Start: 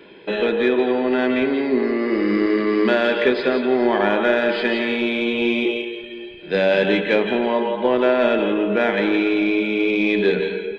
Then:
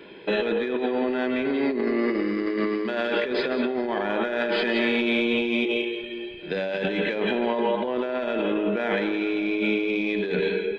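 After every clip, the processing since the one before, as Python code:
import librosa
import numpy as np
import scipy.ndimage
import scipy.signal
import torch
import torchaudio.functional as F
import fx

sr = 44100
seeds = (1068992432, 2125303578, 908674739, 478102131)

y = fx.over_compress(x, sr, threshold_db=-22.0, ratio=-1.0)
y = F.gain(torch.from_numpy(y), -3.0).numpy()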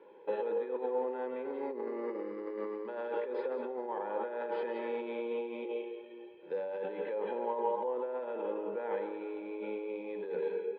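y = fx.double_bandpass(x, sr, hz=670.0, octaves=0.72)
y = F.gain(torch.from_numpy(y), -2.0).numpy()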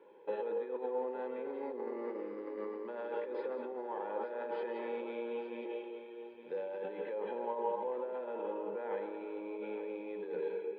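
y = fx.echo_feedback(x, sr, ms=866, feedback_pct=25, wet_db=-11.5)
y = F.gain(torch.from_numpy(y), -3.0).numpy()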